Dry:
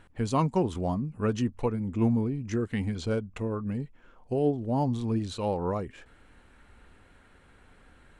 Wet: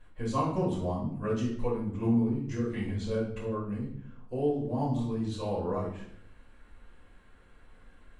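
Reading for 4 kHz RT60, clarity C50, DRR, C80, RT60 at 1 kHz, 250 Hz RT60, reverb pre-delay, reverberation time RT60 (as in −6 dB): 0.50 s, 4.5 dB, −8.5 dB, 8.0 dB, 0.65 s, 0.95 s, 4 ms, 0.65 s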